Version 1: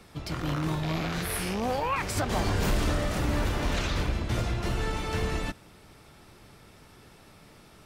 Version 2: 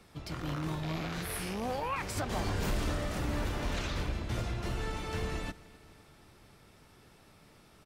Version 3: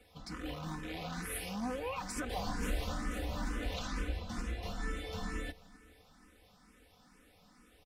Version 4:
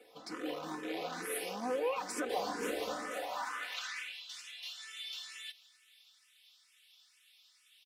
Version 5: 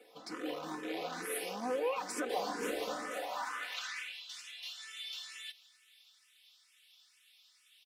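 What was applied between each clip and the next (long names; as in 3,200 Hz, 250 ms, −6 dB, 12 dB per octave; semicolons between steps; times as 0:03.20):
repeating echo 258 ms, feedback 55%, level −21.5 dB; level −6 dB
comb filter 4 ms, depth 87%; frequency shifter mixed with the dry sound +2.2 Hz; level −3 dB
high-pass filter sweep 390 Hz → 3,200 Hz, 0:02.90–0:04.22; level +1 dB
parametric band 90 Hz −14 dB 0.4 octaves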